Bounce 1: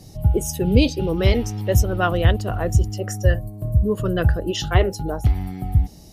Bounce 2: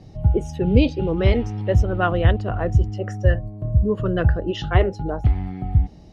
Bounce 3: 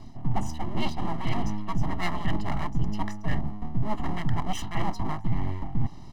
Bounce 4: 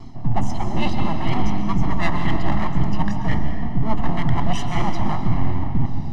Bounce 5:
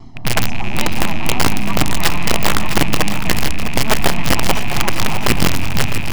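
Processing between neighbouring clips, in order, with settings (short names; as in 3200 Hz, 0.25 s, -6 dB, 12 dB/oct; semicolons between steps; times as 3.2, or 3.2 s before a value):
LPF 2700 Hz 12 dB/oct
full-wave rectifier; reverse; compressor 10:1, threshold -24 dBFS, peak gain reduction 15.5 dB; reverse; comb 1 ms, depth 94%
wow and flutter 72 cents; air absorption 53 m; reverb RT60 2.2 s, pre-delay 0.114 s, DRR 5 dB; gain +6 dB
rattling part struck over -31 dBFS, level -15 dBFS; wrapped overs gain 7.5 dB; split-band echo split 320 Hz, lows 0.122 s, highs 0.656 s, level -10 dB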